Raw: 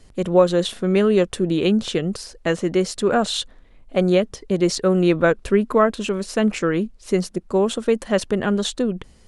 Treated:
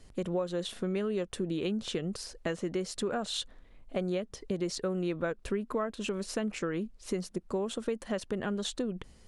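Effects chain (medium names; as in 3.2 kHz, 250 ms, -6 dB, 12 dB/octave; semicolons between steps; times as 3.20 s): compression 4:1, threshold -25 dBFS, peak gain reduction 13.5 dB; trim -5.5 dB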